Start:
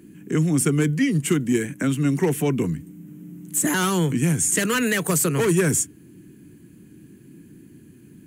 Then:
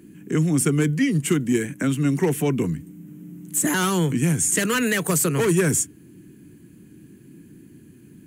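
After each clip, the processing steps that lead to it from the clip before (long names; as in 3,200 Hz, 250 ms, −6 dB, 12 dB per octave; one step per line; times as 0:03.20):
no processing that can be heard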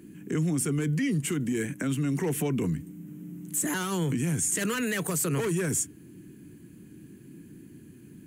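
brickwall limiter −19 dBFS, peak gain reduction 10 dB
level −1.5 dB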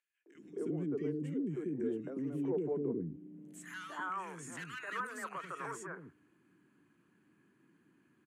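band-pass filter sweep 410 Hz → 1,200 Hz, 0:03.06–0:03.70
three-band delay without the direct sound highs, mids, lows 260/350 ms, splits 370/1,700 Hz
level +1 dB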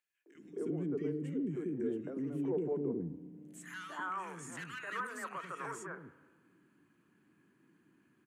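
spring reverb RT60 1.5 s, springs 34/57 ms, chirp 70 ms, DRR 14 dB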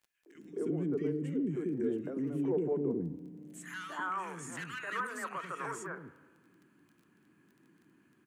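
surface crackle 14 per second −55 dBFS
level +3 dB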